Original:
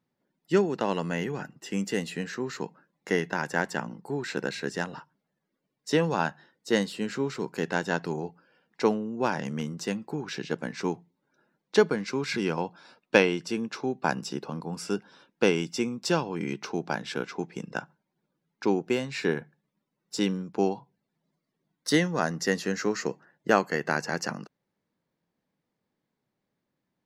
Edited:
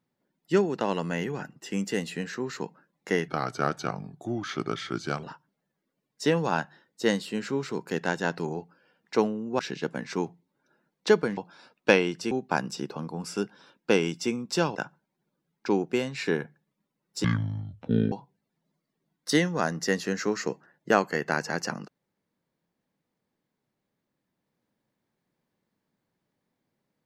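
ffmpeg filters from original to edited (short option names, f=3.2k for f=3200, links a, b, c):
-filter_complex "[0:a]asplit=9[a][b][c][d][e][f][g][h][i];[a]atrim=end=3.284[j];[b]atrim=start=3.28:end=4.9,asetpts=PTS-STARTPTS,asetrate=36603,aresample=44100[k];[c]atrim=start=4.896:end=9.262[l];[d]atrim=start=10.268:end=12.052[m];[e]atrim=start=12.628:end=13.572[n];[f]atrim=start=13.838:end=16.282[o];[g]atrim=start=17.718:end=20.214[p];[h]atrim=start=20.21:end=20.71,asetpts=PTS-STARTPTS,asetrate=25137,aresample=44100,atrim=end_sample=38684,asetpts=PTS-STARTPTS[q];[i]atrim=start=20.706[r];[j][k]acrossfade=d=0.004:c1=hsin:c2=hsin[s];[s][l]acrossfade=d=0.004:c1=hsin:c2=hsin[t];[t][m]acrossfade=d=0.004:c1=hsin:c2=hsin[u];[u][n]acrossfade=d=0.004:c1=hsin:c2=hsin[v];[v][o]acrossfade=d=0.004:c1=hsin:c2=hsin[w];[w][p]acrossfade=d=0.004:c1=hsin:c2=hsin[x];[x][q]acrossfade=d=0.004:c1=hsin:c2=hsin[y];[y][r]acrossfade=d=0.004:c1=hsin:c2=hsin"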